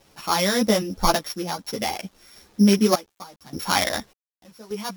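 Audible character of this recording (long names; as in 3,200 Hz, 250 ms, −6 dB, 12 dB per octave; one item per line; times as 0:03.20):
a buzz of ramps at a fixed pitch in blocks of 8 samples
sample-and-hold tremolo 1.7 Hz, depth 95%
a quantiser's noise floor 10 bits, dither none
a shimmering, thickened sound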